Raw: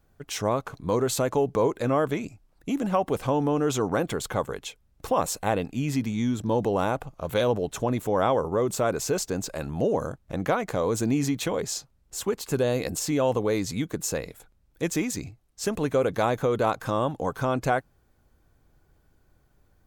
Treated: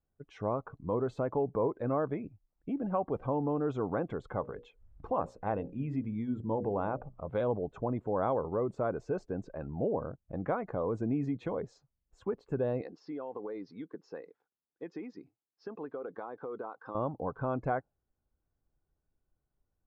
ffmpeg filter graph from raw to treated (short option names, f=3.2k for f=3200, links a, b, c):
-filter_complex "[0:a]asettb=1/sr,asplit=3[a][b][c];[a]atrim=end=4.404[d];[b]atrim=start=4.4:end=7.28,asetpts=PTS-STARTPTS,afade=t=in:d=0.004:c=qsin,afade=t=out:st=2.876:d=0.004:c=qsin,acompressor=mode=upward:threshold=-31dB:ratio=2.5:attack=3.2:release=140:knee=2.83:detection=peak,bandreject=f=60:t=h:w=6,bandreject=f=120:t=h:w=6,bandreject=f=180:t=h:w=6,bandreject=f=240:t=h:w=6,bandreject=f=300:t=h:w=6,bandreject=f=360:t=h:w=6,bandreject=f=420:t=h:w=6,bandreject=f=480:t=h:w=6,bandreject=f=540:t=h:w=6,bandreject=f=600:t=h:w=6[e];[c]atrim=start=7.276[f];[d][e]acrossfade=d=0.004:c1=hsin:c2=qsin[g];[g][f]acrossfade=d=0.004:c1=qsin:c2=hsin,asettb=1/sr,asplit=3[h][i][j];[h]atrim=end=12.814[k];[i]atrim=start=12.81:end=16.95,asetpts=PTS-STARTPTS,afade=t=in:d=0.004:c=qsin,afade=t=out:st=4.136:d=0.004:c=qsin,highpass=350,equalizer=f=600:t=q:w=4:g=-8,equalizer=f=2.3k:t=q:w=4:g=-4,equalizer=f=5.1k:t=q:w=4:g=8,lowpass=f=5.4k:w=0.5412,lowpass=f=5.4k:w=1.3066,acompressor=threshold=-27dB:ratio=12:attack=3.2:release=140:knee=1:detection=peak[l];[j]atrim=start=16.946[m];[k][l]acrossfade=d=0.004:c1=hsin:c2=qsin[n];[n][m]acrossfade=d=0.004:c1=qsin:c2=hsin,afftdn=nr=13:nf=-39,lowpass=1.4k,volume=-7dB"